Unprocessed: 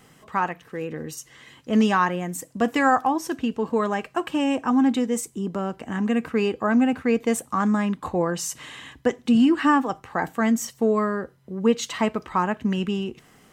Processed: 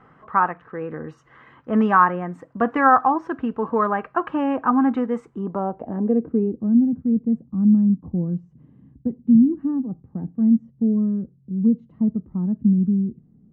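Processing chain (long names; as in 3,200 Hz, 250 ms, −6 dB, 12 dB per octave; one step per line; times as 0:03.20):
low-pass filter sweep 1,300 Hz → 200 Hz, 0:05.36–0:06.70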